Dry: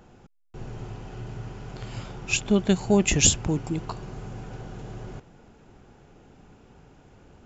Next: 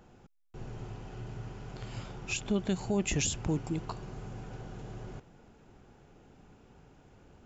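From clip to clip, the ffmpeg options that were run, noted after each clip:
-af "alimiter=limit=0.158:level=0:latency=1:release=91,volume=0.562"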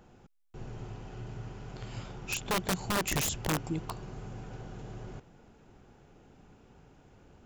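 -af "aeval=exprs='(mod(15*val(0)+1,2)-1)/15':c=same"

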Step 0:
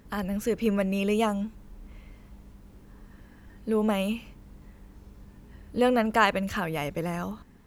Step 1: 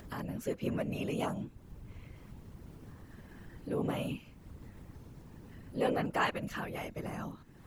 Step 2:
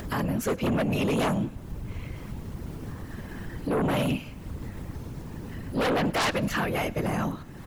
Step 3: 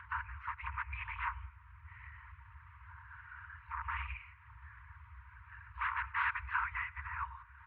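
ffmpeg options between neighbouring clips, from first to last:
-af "acompressor=mode=upward:threshold=0.0316:ratio=2.5,afftfilt=real='hypot(re,im)*cos(2*PI*random(0))':imag='hypot(re,im)*sin(2*PI*random(1))':win_size=512:overlap=0.75,volume=0.708"
-filter_complex "[0:a]asplit=2[s0][s1];[s1]aeval=exprs='0.141*sin(PI/2*5.62*val(0)/0.141)':c=same,volume=0.422[s2];[s0][s2]amix=inputs=2:normalize=0,aecho=1:1:105|210|315|420:0.075|0.039|0.0203|0.0105"
-af "afftfilt=real='re*(1-between(b*sr/4096,150,1100))':imag='im*(1-between(b*sr/4096,150,1100))':win_size=4096:overlap=0.75,highpass=f=160:t=q:w=0.5412,highpass=f=160:t=q:w=1.307,lowpass=f=2400:t=q:w=0.5176,lowpass=f=2400:t=q:w=0.7071,lowpass=f=2400:t=q:w=1.932,afreqshift=-200,volume=0.75"

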